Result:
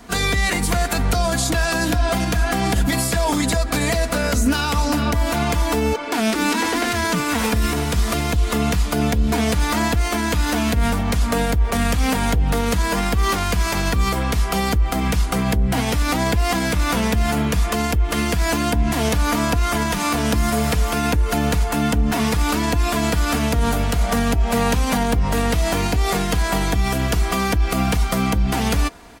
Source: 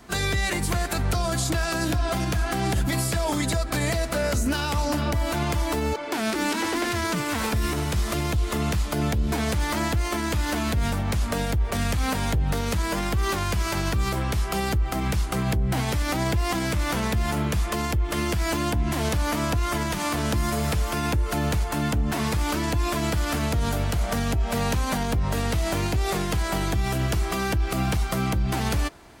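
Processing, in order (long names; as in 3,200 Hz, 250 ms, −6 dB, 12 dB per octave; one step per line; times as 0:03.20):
comb filter 4.2 ms, depth 44%
level +5 dB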